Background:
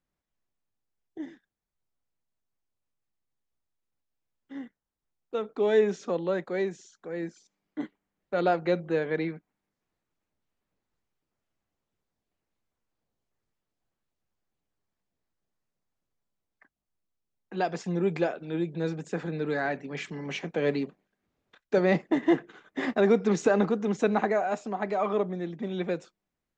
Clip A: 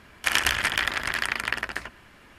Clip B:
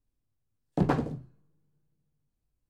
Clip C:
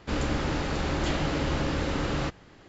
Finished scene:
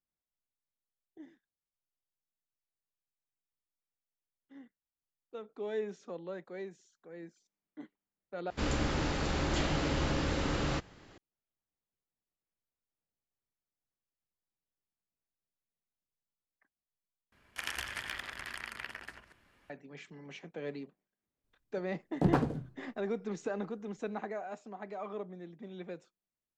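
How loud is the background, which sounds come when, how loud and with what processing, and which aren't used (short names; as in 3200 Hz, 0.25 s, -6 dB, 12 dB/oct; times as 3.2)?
background -13.5 dB
8.5 replace with C -4 dB + high shelf 5000 Hz +4.5 dB
17.32 replace with A -16 dB + reverse delay 0.118 s, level -7.5 dB
21.44 add B -2 dB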